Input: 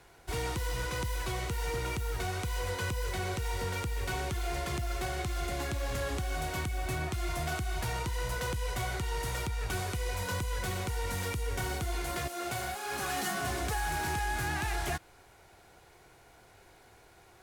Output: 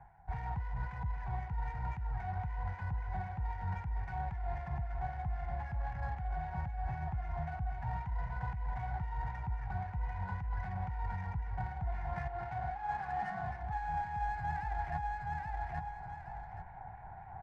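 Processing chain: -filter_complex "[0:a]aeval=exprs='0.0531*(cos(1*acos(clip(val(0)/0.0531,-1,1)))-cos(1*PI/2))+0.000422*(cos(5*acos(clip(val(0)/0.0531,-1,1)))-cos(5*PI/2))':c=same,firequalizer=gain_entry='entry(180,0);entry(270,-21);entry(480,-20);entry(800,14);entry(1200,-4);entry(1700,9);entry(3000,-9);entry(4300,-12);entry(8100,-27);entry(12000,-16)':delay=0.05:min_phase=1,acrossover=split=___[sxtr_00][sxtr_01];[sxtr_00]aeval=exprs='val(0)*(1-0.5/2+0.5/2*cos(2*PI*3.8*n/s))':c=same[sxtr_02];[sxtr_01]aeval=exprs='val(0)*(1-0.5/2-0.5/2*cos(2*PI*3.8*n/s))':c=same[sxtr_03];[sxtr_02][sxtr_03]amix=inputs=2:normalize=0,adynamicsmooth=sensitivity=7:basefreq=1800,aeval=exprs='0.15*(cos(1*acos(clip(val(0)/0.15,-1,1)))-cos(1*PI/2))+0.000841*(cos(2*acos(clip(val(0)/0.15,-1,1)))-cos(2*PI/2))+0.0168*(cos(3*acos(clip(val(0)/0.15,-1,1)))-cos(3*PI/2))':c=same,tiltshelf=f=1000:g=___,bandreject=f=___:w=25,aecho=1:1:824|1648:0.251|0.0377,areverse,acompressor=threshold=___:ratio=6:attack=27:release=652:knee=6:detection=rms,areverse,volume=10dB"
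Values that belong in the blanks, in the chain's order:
1600, 8, 5500, -45dB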